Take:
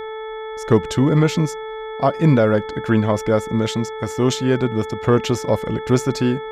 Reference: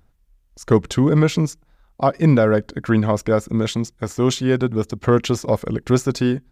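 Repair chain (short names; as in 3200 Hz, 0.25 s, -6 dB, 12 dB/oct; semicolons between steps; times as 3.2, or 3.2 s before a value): de-hum 437.9 Hz, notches 5; notch 3400 Hz, Q 30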